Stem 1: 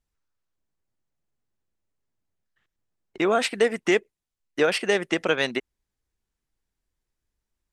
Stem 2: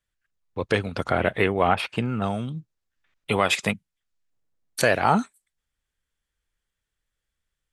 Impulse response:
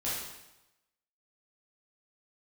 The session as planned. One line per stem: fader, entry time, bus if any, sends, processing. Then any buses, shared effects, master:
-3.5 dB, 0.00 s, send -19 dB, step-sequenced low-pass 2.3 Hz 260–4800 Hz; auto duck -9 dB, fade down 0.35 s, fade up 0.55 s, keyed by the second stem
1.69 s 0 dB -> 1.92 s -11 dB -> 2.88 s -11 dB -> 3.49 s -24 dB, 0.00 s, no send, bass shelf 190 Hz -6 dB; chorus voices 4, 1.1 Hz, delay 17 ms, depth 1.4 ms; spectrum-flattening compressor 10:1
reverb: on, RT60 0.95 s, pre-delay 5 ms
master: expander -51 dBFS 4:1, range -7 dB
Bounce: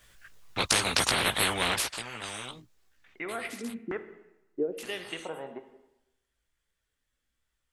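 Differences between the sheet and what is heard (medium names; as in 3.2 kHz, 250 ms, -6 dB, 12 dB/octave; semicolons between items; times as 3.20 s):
stem 1 -3.5 dB -> -10.0 dB; master: missing expander -51 dBFS 4:1, range -7 dB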